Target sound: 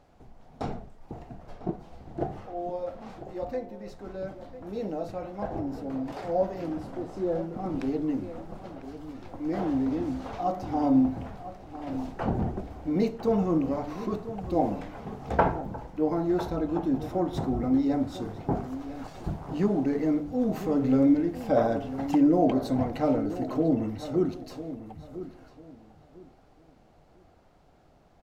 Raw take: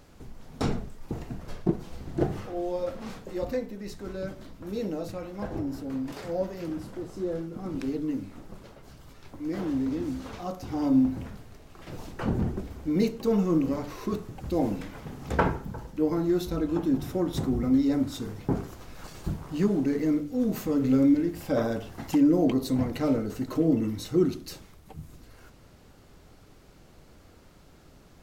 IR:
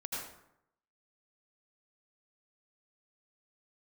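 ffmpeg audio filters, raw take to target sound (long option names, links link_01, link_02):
-filter_complex "[0:a]lowpass=frequency=3600:poles=1,equalizer=frequency=730:width=2.2:gain=10.5,dynaudnorm=framelen=310:gausssize=31:maxgain=10.5dB,asplit=2[link_01][link_02];[link_02]adelay=999,lowpass=frequency=2800:poles=1,volume=-13dB,asplit=2[link_03][link_04];[link_04]adelay=999,lowpass=frequency=2800:poles=1,volume=0.25,asplit=2[link_05][link_06];[link_06]adelay=999,lowpass=frequency=2800:poles=1,volume=0.25[link_07];[link_03][link_05][link_07]amix=inputs=3:normalize=0[link_08];[link_01][link_08]amix=inputs=2:normalize=0,volume=-7.5dB"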